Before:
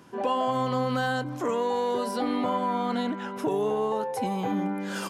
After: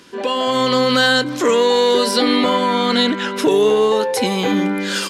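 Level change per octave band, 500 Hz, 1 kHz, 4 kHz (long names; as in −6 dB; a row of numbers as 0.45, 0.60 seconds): +12.5, +7.5, +21.5 decibels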